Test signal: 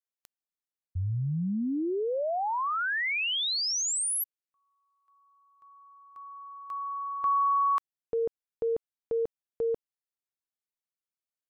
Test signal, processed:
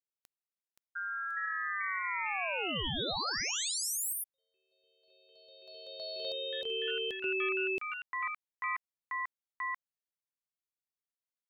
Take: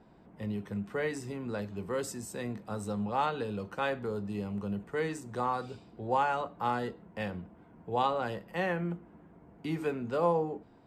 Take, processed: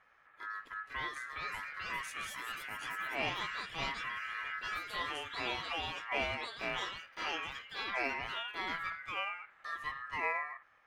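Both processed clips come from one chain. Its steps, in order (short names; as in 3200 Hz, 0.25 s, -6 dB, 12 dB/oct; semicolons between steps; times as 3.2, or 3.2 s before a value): ring modulator 1500 Hz; echoes that change speed 0.564 s, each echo +3 st, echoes 3; gain -5 dB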